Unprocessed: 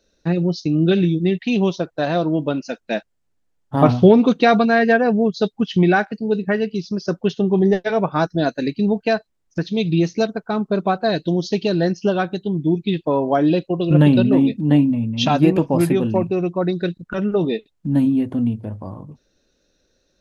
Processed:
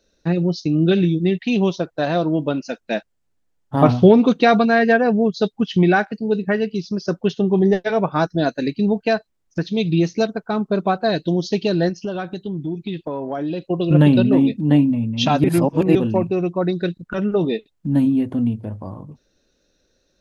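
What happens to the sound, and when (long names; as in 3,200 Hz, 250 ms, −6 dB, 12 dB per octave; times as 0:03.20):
0:11.89–0:13.66: downward compressor 3 to 1, threshold −24 dBFS
0:15.44–0:15.95: reverse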